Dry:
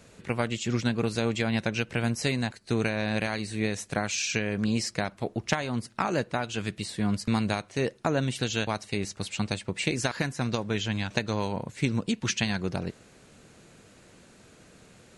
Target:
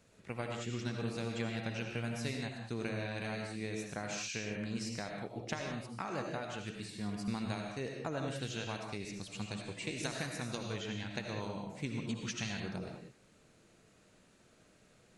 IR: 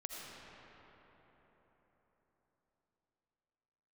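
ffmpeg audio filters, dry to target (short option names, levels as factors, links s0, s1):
-filter_complex "[0:a]asettb=1/sr,asplit=3[s0][s1][s2];[s0]atrim=end=10.034[s3];[s1]atrim=start=10.03:end=10.73,asetpts=PTS-STARTPTS,afade=t=in:d=0.004:c=qsin,afade=t=out:st=0.696:d=0.004:c=qsin,aemphasis=mode=production:type=50kf[s4];[s2]atrim=start=10.726[s5];[s3][s4]acrossfade=d=0.004:c1=hsin:c2=qsin[s6];[s6][s5]acrossfade=d=0.004:c1=qsin:c2=hsin[s7];[1:a]atrim=start_sample=2205,afade=t=out:st=0.26:d=0.01,atrim=end_sample=11907[s8];[s7][s8]afir=irnorm=-1:irlink=0,volume=0.422"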